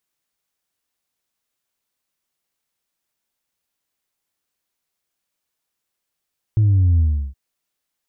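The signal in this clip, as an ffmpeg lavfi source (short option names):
-f lavfi -i "aevalsrc='0.251*clip((0.77-t)/0.35,0,1)*tanh(1.12*sin(2*PI*110*0.77/log(65/110)*(exp(log(65/110)*t/0.77)-1)))/tanh(1.12)':d=0.77:s=44100"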